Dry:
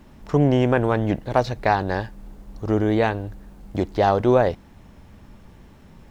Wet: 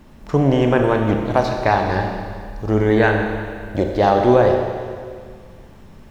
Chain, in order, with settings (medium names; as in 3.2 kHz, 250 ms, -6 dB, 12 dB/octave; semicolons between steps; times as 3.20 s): 2.76–3.86 s: peaking EQ 2.3 kHz -> 500 Hz +13 dB 0.22 oct; Schroeder reverb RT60 2 s, combs from 29 ms, DRR 2.5 dB; trim +2 dB